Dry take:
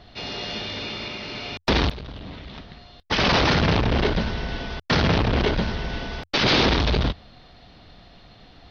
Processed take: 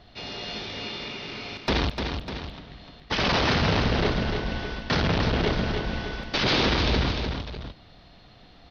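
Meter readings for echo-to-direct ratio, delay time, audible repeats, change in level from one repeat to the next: −5.0 dB, 300 ms, 2, −5.0 dB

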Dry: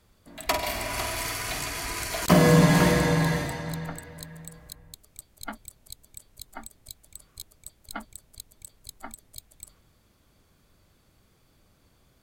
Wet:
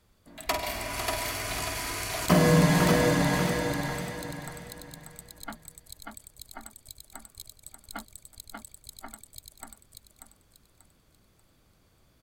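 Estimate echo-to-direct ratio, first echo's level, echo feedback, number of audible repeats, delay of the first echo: −3.0 dB, −3.5 dB, 31%, 4, 588 ms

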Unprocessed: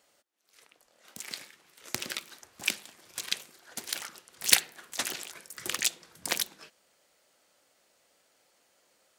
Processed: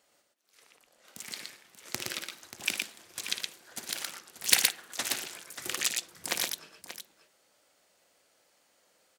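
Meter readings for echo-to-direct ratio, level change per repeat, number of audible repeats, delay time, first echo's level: −2.0 dB, repeats not evenly spaced, 3, 56 ms, −10.5 dB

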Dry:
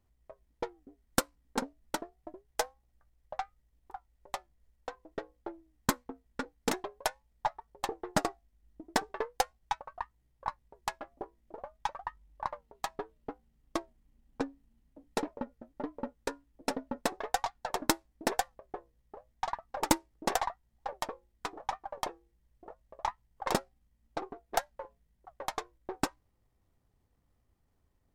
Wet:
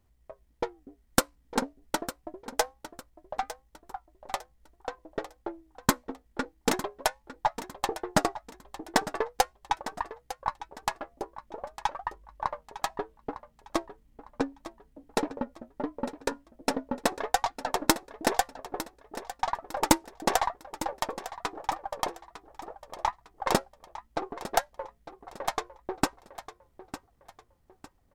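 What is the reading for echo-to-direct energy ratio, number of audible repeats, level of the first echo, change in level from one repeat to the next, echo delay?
−13.5 dB, 3, −14.0 dB, −9.5 dB, 904 ms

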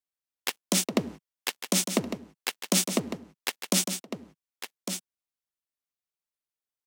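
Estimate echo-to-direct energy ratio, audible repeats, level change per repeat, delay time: −9.0 dB, 1, repeats not evenly spaced, 1,154 ms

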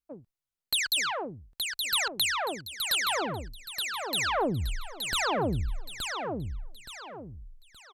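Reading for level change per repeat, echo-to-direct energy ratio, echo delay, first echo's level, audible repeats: −9.5 dB, −4.5 dB, 872 ms, −5.0 dB, 4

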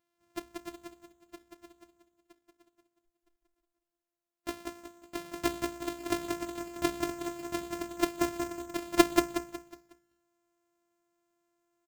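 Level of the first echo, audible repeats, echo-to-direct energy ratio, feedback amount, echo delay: −4.0 dB, 4, −3.5 dB, 37%, 183 ms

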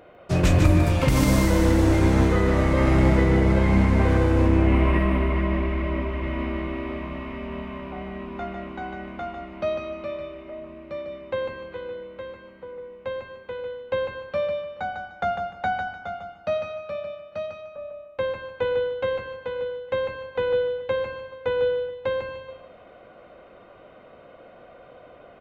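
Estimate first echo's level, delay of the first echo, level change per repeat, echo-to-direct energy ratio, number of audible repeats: −5.5 dB, 150 ms, −11.5 dB, −5.0 dB, 3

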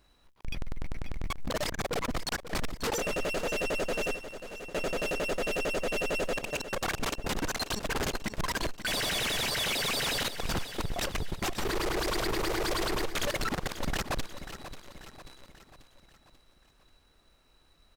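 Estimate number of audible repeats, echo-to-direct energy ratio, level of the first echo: 4, −11.0 dB, −12.0 dB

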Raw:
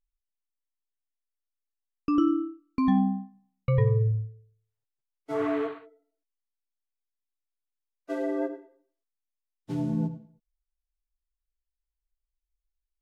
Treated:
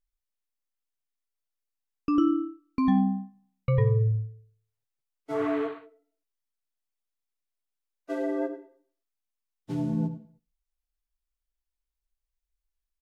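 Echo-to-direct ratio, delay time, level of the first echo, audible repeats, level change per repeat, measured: −22.5 dB, 72 ms, −23.0 dB, 2, −11.5 dB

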